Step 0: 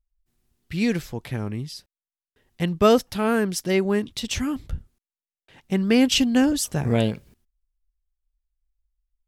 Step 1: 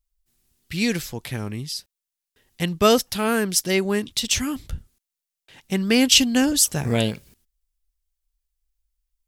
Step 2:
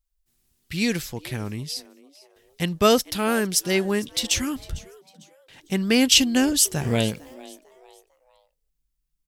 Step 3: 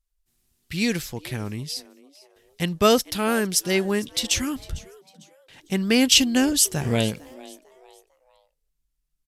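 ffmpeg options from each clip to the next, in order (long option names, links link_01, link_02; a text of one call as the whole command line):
ffmpeg -i in.wav -af "highshelf=frequency=2600:gain=11.5,volume=-1dB" out.wav
ffmpeg -i in.wav -filter_complex "[0:a]asplit=4[link_01][link_02][link_03][link_04];[link_02]adelay=451,afreqshift=130,volume=-21dB[link_05];[link_03]adelay=902,afreqshift=260,volume=-30.1dB[link_06];[link_04]adelay=1353,afreqshift=390,volume=-39.2dB[link_07];[link_01][link_05][link_06][link_07]amix=inputs=4:normalize=0,volume=-1dB" out.wav
ffmpeg -i in.wav -af "aresample=32000,aresample=44100" out.wav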